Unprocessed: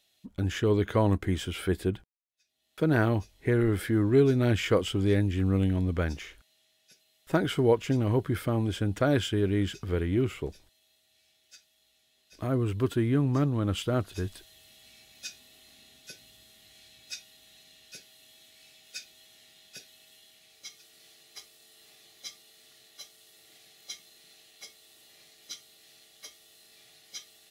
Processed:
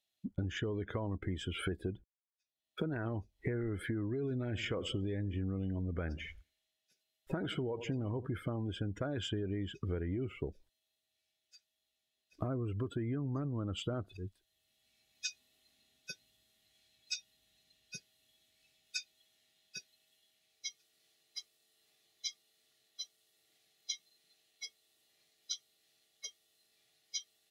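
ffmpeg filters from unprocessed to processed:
-filter_complex "[0:a]asettb=1/sr,asplit=3[a][b][c];[a]atrim=end=4.444[d];[b]atrim=start=4.44:end=8.27,asetpts=PTS-STARTPTS,afade=t=in:d=0.004:c=qsin,afade=t=out:st=3.826:d=0.004:c=qsin,aecho=1:1:89|178|267|356:0.119|0.0535|0.0241|0.0108,atrim=end_sample=168903[e];[c]atrim=start=8.266[f];[d][e]acrossfade=d=0.004:c1=hsin:c2=qsin[g];[g][f]acrossfade=d=0.004:c1=qsin:c2=hsin,asettb=1/sr,asplit=3[h][i][j];[h]atrim=end=17.134[k];[i]atrim=start=17.13:end=18.98,asetpts=PTS-STARTPTS,afade=t=in:d=0.004:c=qsin,afade=t=out:st=1.846:d=0.004:c=qsin,lowshelf=f=150:g=8.5[l];[j]atrim=start=18.976[m];[k][l]acrossfade=d=0.004:c1=hsin:c2=qsin[n];[n][m]acrossfade=d=0.004:c1=qsin:c2=hsin,asplit=2[o][p];[o]atrim=end=14.17,asetpts=PTS-STARTPTS,afade=t=out:st=14.166:d=0.004:c=hsin:silence=0.158489[q];[p]atrim=start=14.17,asetpts=PTS-STARTPTS,afade=t=in:d=1.1:silence=0.158489[r];[q][r]concat=n=2:v=0:a=1,alimiter=limit=-19.5dB:level=0:latency=1:release=12,afftdn=nr=22:nf=-41,acompressor=threshold=-39dB:ratio=16,volume=5.5dB"

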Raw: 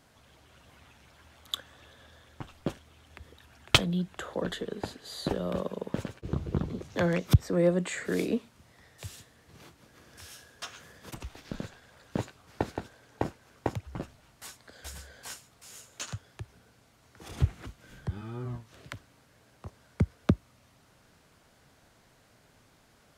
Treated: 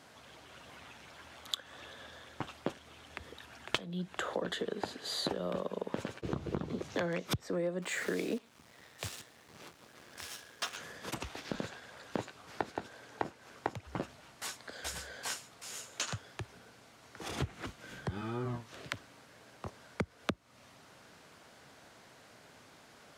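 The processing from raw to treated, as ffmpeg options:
-filter_complex "[0:a]asettb=1/sr,asplit=3[a][b][c];[a]atrim=end=7.824[d];[b]atrim=start=7.82:end=10.77,asetpts=PTS-STARTPTS,afade=t=in:d=0.004:c=qsin,afade=t=out:st=2.946:d=0.004:c=qsin,acrusher=bits=8:dc=4:mix=0:aa=0.000001[e];[c]atrim=start=10.766[f];[d][e]acrossfade=d=0.004:c1=hsin:c2=qsin[g];[g][f]acrossfade=d=0.004:c1=qsin:c2=hsin,highpass=f=270:p=1,highshelf=f=11k:g=-10,acompressor=threshold=-38dB:ratio=8,volume=6.5dB"

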